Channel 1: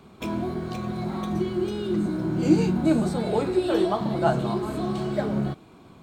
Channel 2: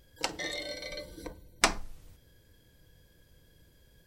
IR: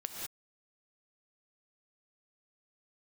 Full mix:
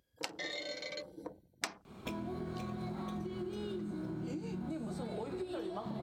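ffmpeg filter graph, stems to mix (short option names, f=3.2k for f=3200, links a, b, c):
-filter_complex "[0:a]acompressor=threshold=-32dB:ratio=6,adelay=1850,volume=-2dB[a];[1:a]afwtdn=0.00398,highpass=170,volume=-1dB[b];[a][b]amix=inputs=2:normalize=0,acompressor=threshold=-37dB:ratio=4"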